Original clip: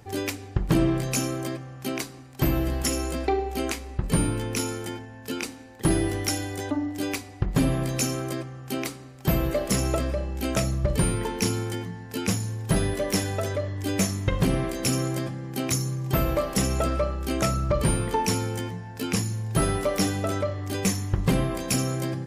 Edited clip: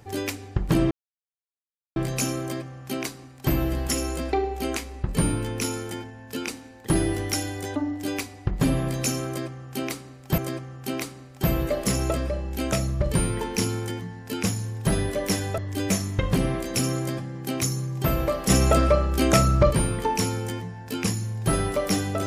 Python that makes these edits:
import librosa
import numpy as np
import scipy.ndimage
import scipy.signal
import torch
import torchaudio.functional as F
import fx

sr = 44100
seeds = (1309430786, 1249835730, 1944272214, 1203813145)

y = fx.edit(x, sr, fx.insert_silence(at_s=0.91, length_s=1.05),
    fx.repeat(start_s=8.22, length_s=1.11, count=2),
    fx.cut(start_s=13.42, length_s=0.25),
    fx.clip_gain(start_s=16.59, length_s=1.21, db=6.0), tone=tone)